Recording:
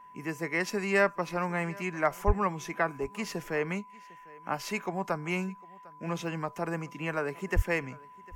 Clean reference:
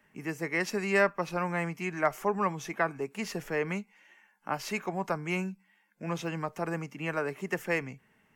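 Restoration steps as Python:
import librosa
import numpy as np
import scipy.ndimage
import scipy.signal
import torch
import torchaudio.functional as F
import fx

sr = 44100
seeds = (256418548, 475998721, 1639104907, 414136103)

y = fx.notch(x, sr, hz=1000.0, q=30.0)
y = fx.fix_deplosive(y, sr, at_s=(2.26, 7.55))
y = fx.fix_echo_inverse(y, sr, delay_ms=752, level_db=-23.0)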